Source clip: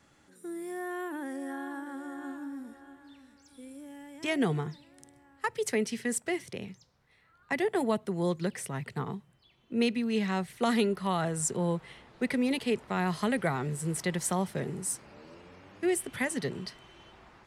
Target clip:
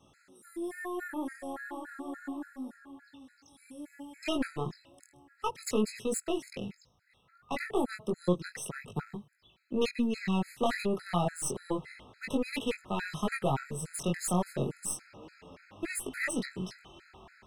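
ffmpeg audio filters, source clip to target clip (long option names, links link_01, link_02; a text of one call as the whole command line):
ffmpeg -i in.wav -af "aeval=exprs='(tanh(14.1*val(0)+0.45)-tanh(0.45))/14.1':channel_layout=same,flanger=delay=18.5:depth=4.9:speed=0.32,afftfilt=real='re*gt(sin(2*PI*3.5*pts/sr)*(1-2*mod(floor(b*sr/1024/1300),2)),0)':imag='im*gt(sin(2*PI*3.5*pts/sr)*(1-2*mod(floor(b*sr/1024/1300),2)),0)':win_size=1024:overlap=0.75,volume=7dB" out.wav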